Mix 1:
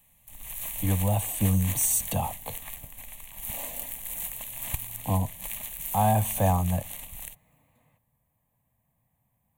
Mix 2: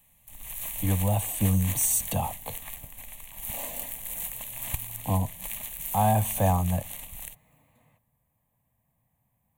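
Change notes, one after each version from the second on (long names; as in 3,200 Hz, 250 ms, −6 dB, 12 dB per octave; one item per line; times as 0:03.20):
second sound: send on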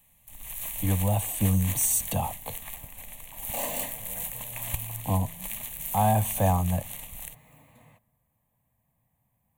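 second sound +8.0 dB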